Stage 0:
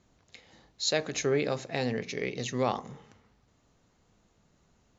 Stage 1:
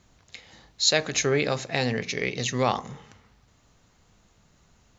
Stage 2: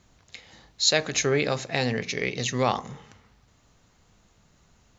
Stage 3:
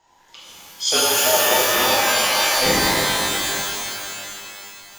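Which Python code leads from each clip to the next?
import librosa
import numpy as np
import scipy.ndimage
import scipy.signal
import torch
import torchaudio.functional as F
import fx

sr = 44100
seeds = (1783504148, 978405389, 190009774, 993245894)

y1 = fx.peak_eq(x, sr, hz=350.0, db=-6.0, octaves=2.6)
y1 = F.gain(torch.from_numpy(y1), 8.5).numpy()
y2 = y1
y3 = fx.band_invert(y2, sr, width_hz=1000)
y3 = fx.rev_shimmer(y3, sr, seeds[0], rt60_s=2.7, semitones=12, shimmer_db=-2, drr_db=-7.5)
y3 = F.gain(torch.from_numpy(y3), -2.5).numpy()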